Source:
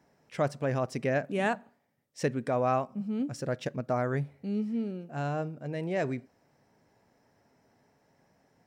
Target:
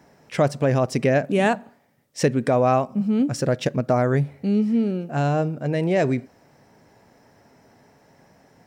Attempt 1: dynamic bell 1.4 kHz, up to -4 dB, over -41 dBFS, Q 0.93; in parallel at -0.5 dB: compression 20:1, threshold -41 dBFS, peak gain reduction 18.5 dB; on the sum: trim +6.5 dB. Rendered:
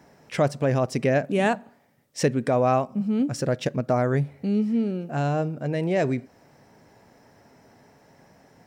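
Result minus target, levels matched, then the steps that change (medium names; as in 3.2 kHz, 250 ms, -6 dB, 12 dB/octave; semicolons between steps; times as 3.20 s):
compression: peak gain reduction +11 dB
change: compression 20:1, threshold -29.5 dBFS, peak gain reduction 7.5 dB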